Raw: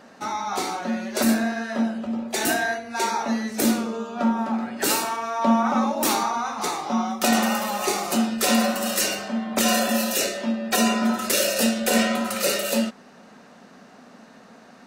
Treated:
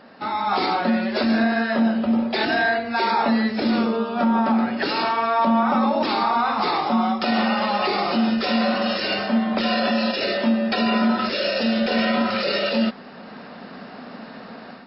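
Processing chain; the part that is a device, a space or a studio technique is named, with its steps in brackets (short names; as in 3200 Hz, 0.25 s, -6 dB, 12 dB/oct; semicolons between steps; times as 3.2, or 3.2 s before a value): low-bitrate web radio (AGC gain up to 9 dB; limiter -12.5 dBFS, peak gain reduction 10.5 dB; gain +1.5 dB; MP3 40 kbps 12000 Hz)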